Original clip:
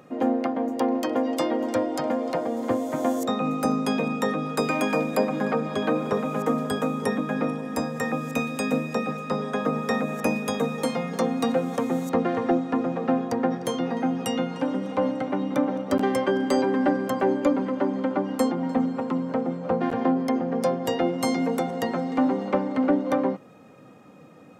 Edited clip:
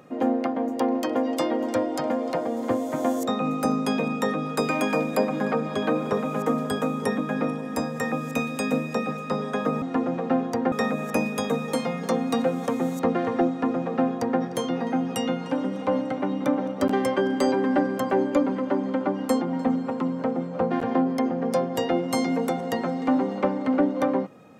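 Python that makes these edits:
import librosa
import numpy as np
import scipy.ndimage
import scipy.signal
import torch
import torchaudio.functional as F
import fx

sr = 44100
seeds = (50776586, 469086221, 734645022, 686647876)

y = fx.edit(x, sr, fx.duplicate(start_s=12.6, length_s=0.9, to_s=9.82), tone=tone)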